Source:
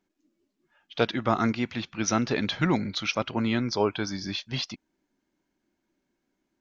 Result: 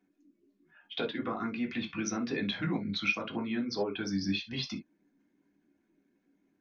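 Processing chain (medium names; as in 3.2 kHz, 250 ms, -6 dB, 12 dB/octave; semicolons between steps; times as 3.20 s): resonances exaggerated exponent 1.5; compression 5:1, threshold -34 dBFS, peak gain reduction 15 dB; reverberation, pre-delay 3 ms, DRR 0 dB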